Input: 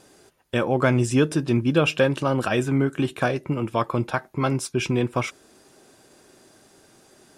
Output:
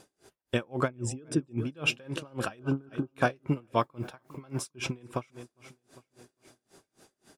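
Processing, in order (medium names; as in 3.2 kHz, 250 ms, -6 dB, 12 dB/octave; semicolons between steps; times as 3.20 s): 0.88–1.58 s: resonances exaggerated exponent 1.5; 2.59–3.15 s: brick-wall FIR low-pass 1.6 kHz; feedback delay 403 ms, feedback 50%, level -20 dB; 3.79–4.65 s: word length cut 10-bit, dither none; logarithmic tremolo 3.7 Hz, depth 32 dB; trim -1.5 dB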